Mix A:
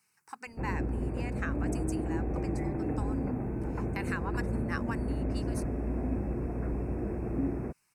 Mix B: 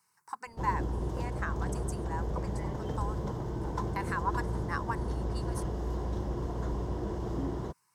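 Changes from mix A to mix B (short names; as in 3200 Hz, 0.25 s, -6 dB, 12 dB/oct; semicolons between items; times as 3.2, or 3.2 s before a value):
first sound: remove brick-wall FIR low-pass 2700 Hz; second sound: muted; master: add thirty-one-band EQ 250 Hz -9 dB, 1000 Hz +11 dB, 2500 Hz -10 dB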